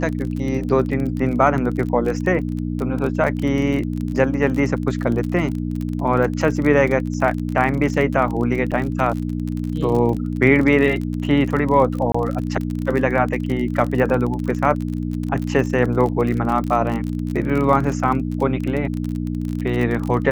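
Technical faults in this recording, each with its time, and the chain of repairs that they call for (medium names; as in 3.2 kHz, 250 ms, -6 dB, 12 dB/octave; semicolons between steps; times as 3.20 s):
crackle 34 per s -24 dBFS
hum 60 Hz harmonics 5 -24 dBFS
8.71–8.72 s: dropout 7.2 ms
12.12–12.14 s: dropout 24 ms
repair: de-click; de-hum 60 Hz, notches 5; interpolate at 8.71 s, 7.2 ms; interpolate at 12.12 s, 24 ms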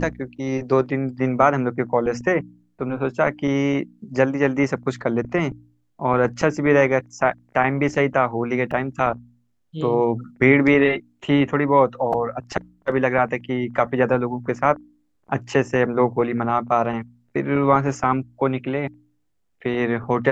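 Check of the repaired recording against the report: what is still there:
nothing left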